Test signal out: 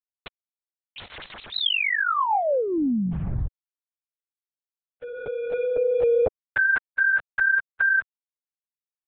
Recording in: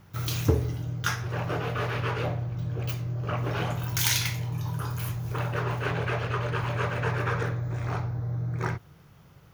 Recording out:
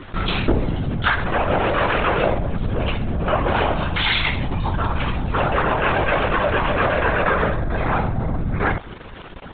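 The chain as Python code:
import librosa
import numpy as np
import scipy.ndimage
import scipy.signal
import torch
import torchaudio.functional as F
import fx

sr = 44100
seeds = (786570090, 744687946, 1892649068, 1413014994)

p1 = fx.rider(x, sr, range_db=4, speed_s=0.5)
p2 = x + F.gain(torch.from_numpy(p1), -1.0).numpy()
p3 = np.sign(p2) * np.maximum(np.abs(p2) - 10.0 ** (-45.5 / 20.0), 0.0)
p4 = p3 + 0.55 * np.pad(p3, (int(3.7 * sr / 1000.0), 0))[:len(p3)]
p5 = fx.lpc_vocoder(p4, sr, seeds[0], excitation='whisper', order=16)
p6 = fx.dynamic_eq(p5, sr, hz=770.0, q=1.1, threshold_db=-39.0, ratio=4.0, max_db=4)
y = fx.env_flatten(p6, sr, amount_pct=50)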